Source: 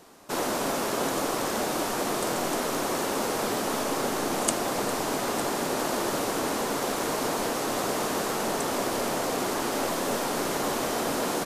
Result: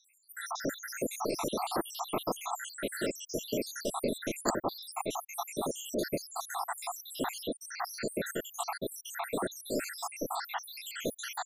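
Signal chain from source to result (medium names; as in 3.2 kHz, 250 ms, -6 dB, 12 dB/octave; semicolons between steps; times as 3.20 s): random holes in the spectrogram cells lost 84%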